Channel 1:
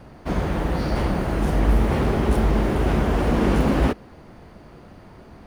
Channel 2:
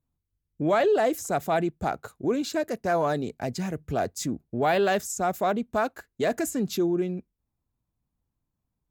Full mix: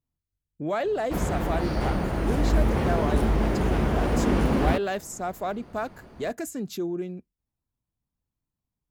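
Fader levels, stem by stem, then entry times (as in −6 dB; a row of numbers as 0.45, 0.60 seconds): −3.5, −5.0 decibels; 0.85, 0.00 seconds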